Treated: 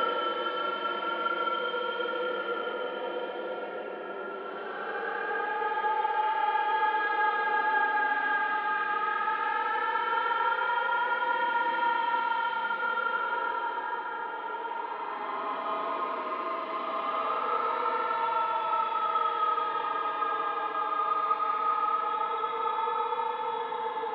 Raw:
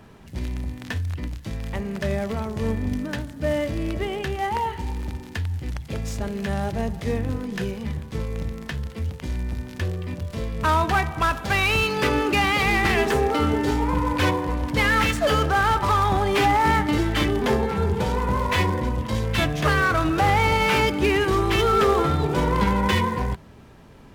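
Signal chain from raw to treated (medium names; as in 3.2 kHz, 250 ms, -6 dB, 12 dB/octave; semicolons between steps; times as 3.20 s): flutter echo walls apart 6.7 m, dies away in 0.23 s; mistuned SSB +59 Hz 250–3300 Hz; Paulstretch 32×, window 0.05 s, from 15.35 s; trim -9 dB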